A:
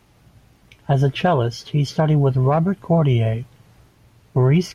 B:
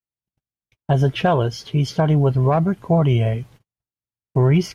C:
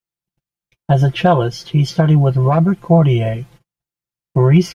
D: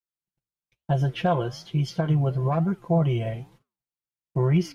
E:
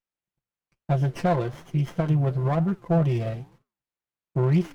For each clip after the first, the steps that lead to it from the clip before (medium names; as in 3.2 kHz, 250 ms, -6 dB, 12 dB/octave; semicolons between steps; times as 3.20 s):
gate -43 dBFS, range -47 dB
comb 5.8 ms, depth 75%; trim +1.5 dB
flange 1.1 Hz, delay 5.5 ms, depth 8.4 ms, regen -89%; trim -6 dB
sliding maximum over 9 samples